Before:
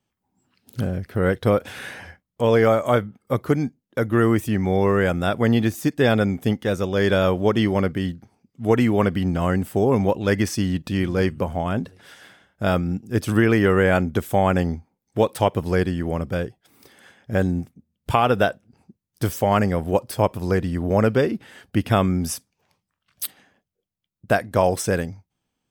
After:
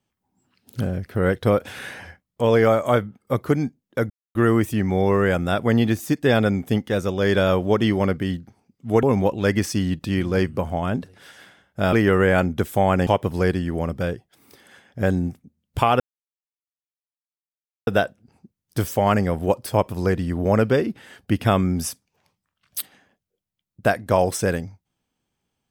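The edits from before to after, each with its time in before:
0:04.10: splice in silence 0.25 s
0:08.78–0:09.86: remove
0:12.76–0:13.50: remove
0:14.64–0:15.39: remove
0:18.32: splice in silence 1.87 s

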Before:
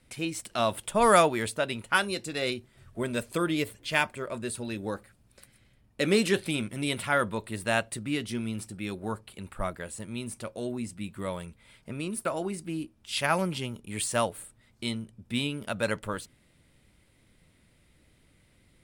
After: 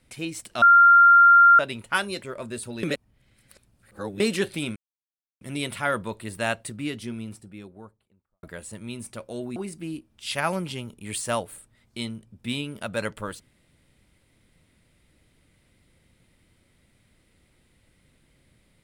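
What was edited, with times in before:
0:00.62–0:01.59: beep over 1,390 Hz −10 dBFS
0:02.22–0:04.14: remove
0:04.75–0:06.12: reverse
0:06.68: splice in silence 0.65 s
0:07.96–0:09.70: fade out and dull
0:10.83–0:12.42: remove

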